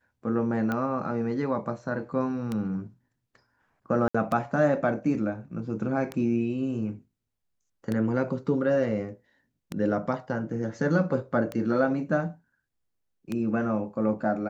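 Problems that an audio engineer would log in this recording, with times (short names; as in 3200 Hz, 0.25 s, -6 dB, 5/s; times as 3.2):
tick 33 1/3 rpm -17 dBFS
4.08–4.14 gap 65 ms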